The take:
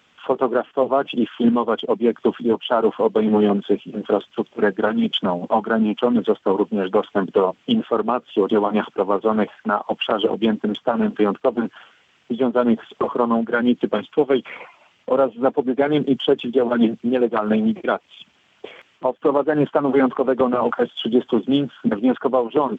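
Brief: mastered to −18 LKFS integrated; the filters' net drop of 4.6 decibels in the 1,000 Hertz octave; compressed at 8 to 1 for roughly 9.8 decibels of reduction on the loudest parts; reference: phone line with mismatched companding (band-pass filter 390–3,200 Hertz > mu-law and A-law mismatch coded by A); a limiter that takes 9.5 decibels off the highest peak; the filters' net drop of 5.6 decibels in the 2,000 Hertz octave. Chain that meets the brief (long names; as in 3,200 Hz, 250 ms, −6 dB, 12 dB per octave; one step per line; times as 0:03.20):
parametric band 1,000 Hz −4.5 dB
parametric band 2,000 Hz −5.5 dB
downward compressor 8 to 1, threshold −23 dBFS
brickwall limiter −21 dBFS
band-pass filter 390–3,200 Hz
mu-law and A-law mismatch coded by A
level +19 dB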